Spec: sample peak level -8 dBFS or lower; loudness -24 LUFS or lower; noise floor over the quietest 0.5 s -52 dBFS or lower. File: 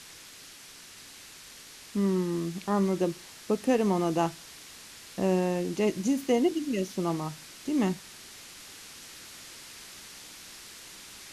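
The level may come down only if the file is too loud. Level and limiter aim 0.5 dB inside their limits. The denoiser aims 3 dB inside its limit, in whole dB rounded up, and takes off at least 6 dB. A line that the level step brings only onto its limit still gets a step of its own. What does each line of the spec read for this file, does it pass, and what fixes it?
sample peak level -13.5 dBFS: pass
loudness -28.5 LUFS: pass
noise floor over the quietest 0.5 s -49 dBFS: fail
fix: noise reduction 6 dB, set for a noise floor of -49 dBFS

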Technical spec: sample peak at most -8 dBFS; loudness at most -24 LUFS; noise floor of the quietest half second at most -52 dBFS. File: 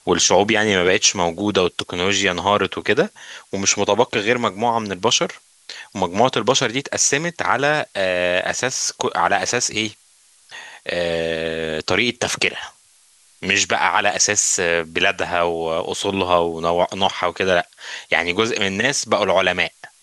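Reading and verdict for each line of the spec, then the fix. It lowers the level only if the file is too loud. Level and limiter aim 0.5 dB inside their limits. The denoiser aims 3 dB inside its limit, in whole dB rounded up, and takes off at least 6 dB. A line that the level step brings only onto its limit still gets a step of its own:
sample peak -2.5 dBFS: fail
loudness -18.5 LUFS: fail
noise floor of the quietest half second -54 dBFS: pass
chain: trim -6 dB

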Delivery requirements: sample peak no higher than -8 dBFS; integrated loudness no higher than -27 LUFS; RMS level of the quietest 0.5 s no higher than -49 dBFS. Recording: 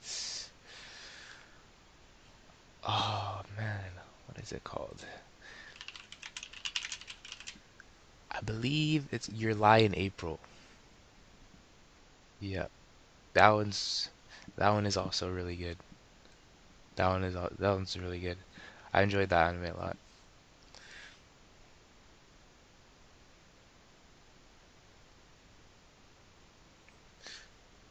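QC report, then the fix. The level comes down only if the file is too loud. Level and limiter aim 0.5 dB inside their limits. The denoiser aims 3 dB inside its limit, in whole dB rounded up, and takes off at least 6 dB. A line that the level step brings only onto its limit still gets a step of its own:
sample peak -5.5 dBFS: fail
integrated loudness -33.0 LUFS: pass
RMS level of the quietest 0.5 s -60 dBFS: pass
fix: peak limiter -8.5 dBFS

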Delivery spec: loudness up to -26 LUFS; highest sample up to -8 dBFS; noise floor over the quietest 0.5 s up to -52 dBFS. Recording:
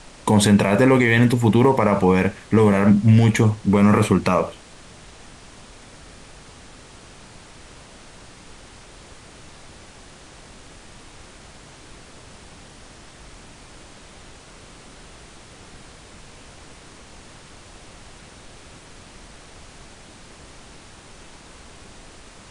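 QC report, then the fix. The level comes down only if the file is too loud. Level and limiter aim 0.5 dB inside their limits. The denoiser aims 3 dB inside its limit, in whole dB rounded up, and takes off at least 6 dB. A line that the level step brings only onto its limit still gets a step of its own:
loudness -17.0 LUFS: fail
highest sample -5.0 dBFS: fail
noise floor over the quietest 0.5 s -44 dBFS: fail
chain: trim -9.5 dB

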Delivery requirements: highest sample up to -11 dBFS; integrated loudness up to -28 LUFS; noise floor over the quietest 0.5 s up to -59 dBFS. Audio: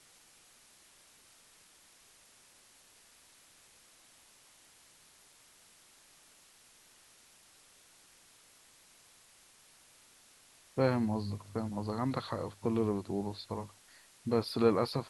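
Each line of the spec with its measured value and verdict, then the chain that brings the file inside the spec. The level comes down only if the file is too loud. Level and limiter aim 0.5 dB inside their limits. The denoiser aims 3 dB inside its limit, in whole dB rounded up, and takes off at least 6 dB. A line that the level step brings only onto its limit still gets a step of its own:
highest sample -13.5 dBFS: pass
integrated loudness -34.0 LUFS: pass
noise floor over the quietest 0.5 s -62 dBFS: pass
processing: none needed

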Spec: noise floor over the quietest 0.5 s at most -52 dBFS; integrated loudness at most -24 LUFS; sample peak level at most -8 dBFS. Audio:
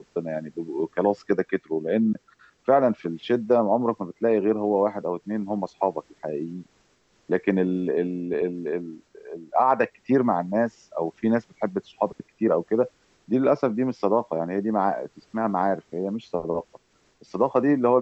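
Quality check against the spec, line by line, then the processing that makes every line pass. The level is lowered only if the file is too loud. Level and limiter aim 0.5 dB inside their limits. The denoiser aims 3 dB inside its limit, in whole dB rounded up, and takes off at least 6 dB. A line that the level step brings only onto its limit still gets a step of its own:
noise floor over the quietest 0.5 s -64 dBFS: pass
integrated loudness -25.0 LUFS: pass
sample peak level -7.5 dBFS: fail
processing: peak limiter -8.5 dBFS

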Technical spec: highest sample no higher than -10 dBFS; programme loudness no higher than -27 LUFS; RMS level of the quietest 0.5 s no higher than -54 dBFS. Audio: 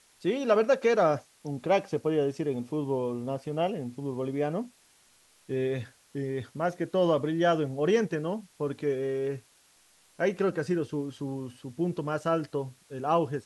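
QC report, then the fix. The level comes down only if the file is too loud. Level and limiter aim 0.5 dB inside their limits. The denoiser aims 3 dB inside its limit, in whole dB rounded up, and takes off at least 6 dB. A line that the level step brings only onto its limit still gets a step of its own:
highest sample -12.5 dBFS: pass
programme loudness -29.5 LUFS: pass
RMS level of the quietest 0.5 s -62 dBFS: pass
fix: none needed

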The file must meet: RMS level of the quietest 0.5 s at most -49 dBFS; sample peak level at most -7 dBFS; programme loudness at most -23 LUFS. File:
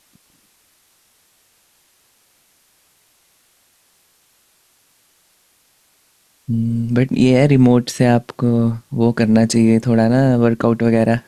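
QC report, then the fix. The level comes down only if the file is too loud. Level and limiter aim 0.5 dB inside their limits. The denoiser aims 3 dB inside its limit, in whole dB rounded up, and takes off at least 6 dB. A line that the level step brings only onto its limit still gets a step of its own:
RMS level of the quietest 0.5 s -58 dBFS: pass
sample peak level -2.5 dBFS: fail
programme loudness -15.0 LUFS: fail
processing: trim -8.5 dB

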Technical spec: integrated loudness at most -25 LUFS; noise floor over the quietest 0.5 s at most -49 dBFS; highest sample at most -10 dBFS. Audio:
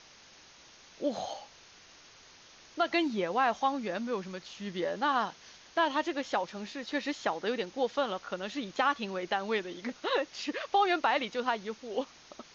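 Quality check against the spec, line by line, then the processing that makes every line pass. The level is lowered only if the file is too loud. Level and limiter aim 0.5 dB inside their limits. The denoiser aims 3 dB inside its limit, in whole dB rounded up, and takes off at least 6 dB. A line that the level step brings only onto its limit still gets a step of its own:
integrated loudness -32.0 LUFS: pass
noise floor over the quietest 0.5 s -56 dBFS: pass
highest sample -15.0 dBFS: pass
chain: none needed

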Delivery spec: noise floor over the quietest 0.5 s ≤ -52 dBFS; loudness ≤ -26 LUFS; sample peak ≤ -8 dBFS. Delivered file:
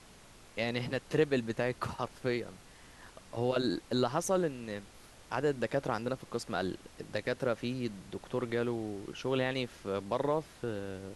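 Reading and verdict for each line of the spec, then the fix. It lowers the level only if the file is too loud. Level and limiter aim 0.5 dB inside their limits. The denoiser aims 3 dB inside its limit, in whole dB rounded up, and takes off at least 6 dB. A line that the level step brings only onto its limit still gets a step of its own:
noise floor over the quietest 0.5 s -56 dBFS: pass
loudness -34.5 LUFS: pass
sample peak -15.0 dBFS: pass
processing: none needed

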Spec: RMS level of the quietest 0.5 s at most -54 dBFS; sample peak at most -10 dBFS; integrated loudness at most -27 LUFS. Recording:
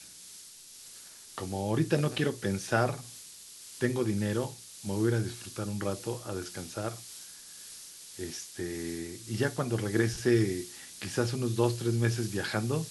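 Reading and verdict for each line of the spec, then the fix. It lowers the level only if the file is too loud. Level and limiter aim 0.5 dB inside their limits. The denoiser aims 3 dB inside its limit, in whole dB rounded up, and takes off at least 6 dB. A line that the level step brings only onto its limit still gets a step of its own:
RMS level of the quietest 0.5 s -50 dBFS: fail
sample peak -11.0 dBFS: pass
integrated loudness -31.5 LUFS: pass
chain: noise reduction 7 dB, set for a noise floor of -50 dBFS

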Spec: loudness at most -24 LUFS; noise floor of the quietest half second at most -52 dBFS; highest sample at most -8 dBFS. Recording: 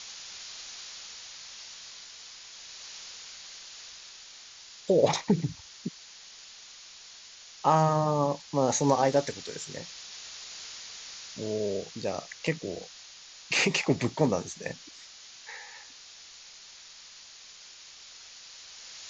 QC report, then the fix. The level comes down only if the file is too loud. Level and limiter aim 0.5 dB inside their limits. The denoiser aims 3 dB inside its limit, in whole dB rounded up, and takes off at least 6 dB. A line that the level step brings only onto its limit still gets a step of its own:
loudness -30.0 LUFS: pass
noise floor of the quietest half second -50 dBFS: fail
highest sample -10.0 dBFS: pass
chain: noise reduction 6 dB, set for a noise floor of -50 dBFS

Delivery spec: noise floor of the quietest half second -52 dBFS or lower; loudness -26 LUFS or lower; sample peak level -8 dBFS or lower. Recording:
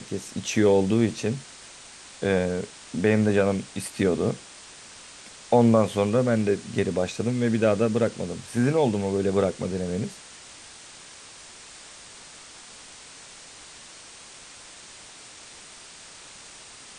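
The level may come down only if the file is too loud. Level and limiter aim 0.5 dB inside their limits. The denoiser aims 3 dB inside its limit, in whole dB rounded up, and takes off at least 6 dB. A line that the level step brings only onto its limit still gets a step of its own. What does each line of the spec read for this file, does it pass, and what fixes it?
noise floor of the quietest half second -46 dBFS: fail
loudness -24.5 LUFS: fail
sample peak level -6.5 dBFS: fail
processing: noise reduction 7 dB, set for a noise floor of -46 dBFS; trim -2 dB

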